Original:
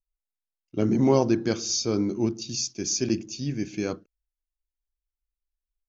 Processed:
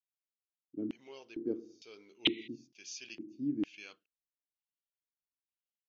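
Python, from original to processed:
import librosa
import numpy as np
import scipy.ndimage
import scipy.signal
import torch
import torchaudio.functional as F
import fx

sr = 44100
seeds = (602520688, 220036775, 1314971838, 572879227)

y = fx.peak_eq(x, sr, hz=430.0, db=11.5, octaves=0.41, at=(1.06, 2.62))
y = fx.rider(y, sr, range_db=4, speed_s=0.5)
y = fx.spec_paint(y, sr, seeds[0], shape='noise', start_s=2.25, length_s=0.23, low_hz=1900.0, high_hz=4100.0, level_db=-15.0)
y = fx.filter_lfo_bandpass(y, sr, shape='square', hz=1.1, low_hz=290.0, high_hz=2900.0, q=4.9)
y = y * librosa.db_to_amplitude(-4.0)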